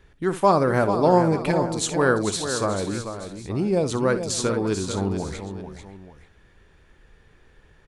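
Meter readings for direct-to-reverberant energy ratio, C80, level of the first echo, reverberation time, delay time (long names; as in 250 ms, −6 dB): no reverb audible, no reverb audible, −13.0 dB, no reverb audible, 61 ms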